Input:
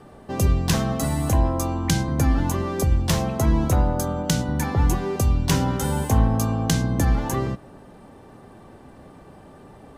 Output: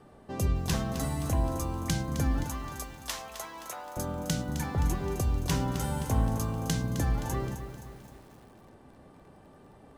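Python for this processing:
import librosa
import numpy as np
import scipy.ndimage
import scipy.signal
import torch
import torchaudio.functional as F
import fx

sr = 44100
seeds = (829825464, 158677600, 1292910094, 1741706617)

y = fx.highpass(x, sr, hz=930.0, slope=12, at=(2.44, 3.97))
y = fx.echo_crushed(y, sr, ms=261, feedback_pct=55, bits=7, wet_db=-10.0)
y = F.gain(torch.from_numpy(y), -8.5).numpy()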